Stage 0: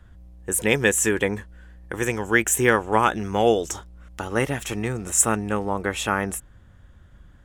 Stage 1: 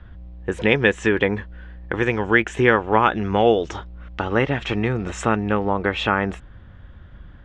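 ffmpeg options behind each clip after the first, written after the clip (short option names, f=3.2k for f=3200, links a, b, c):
-filter_complex "[0:a]lowpass=f=3.9k:w=0.5412,lowpass=f=3.9k:w=1.3066,asplit=2[a][b];[b]acompressor=threshold=-27dB:ratio=6,volume=2dB[c];[a][c]amix=inputs=2:normalize=0"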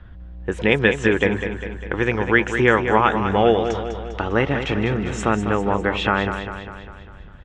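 -af "aecho=1:1:200|400|600|800|1000|1200|1400:0.376|0.207|0.114|0.0625|0.0344|0.0189|0.0104"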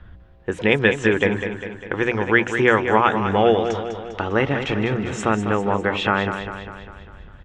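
-af "bandreject=f=60:t=h:w=6,bandreject=f=120:t=h:w=6,bandreject=f=180:t=h:w=6,bandreject=f=240:t=h:w=6,bandreject=f=300:t=h:w=6"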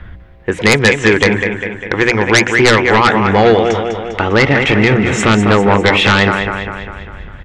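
-af "equalizer=f=2.1k:t=o:w=0.38:g=8.5,dynaudnorm=f=250:g=13:m=11.5dB,aeval=exprs='0.944*sin(PI/2*3.16*val(0)/0.944)':c=same,volume=-2.5dB"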